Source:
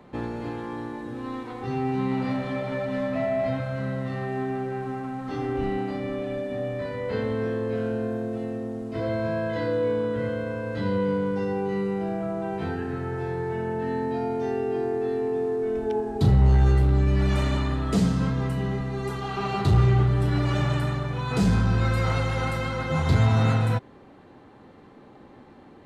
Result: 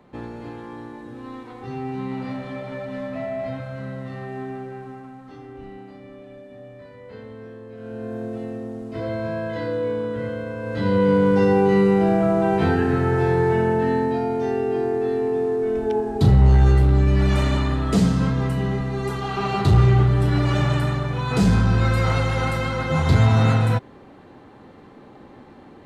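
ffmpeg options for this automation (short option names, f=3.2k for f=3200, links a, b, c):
-af "volume=19.5dB,afade=t=out:st=4.49:d=0.94:silence=0.354813,afade=t=in:st=7.77:d=0.47:silence=0.251189,afade=t=in:st=10.57:d=0.86:silence=0.298538,afade=t=out:st=13.46:d=0.77:silence=0.473151"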